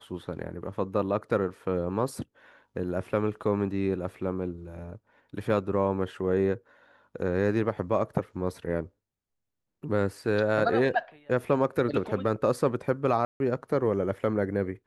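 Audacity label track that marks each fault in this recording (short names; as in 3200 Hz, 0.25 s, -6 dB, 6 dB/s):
13.250000	13.400000	gap 0.151 s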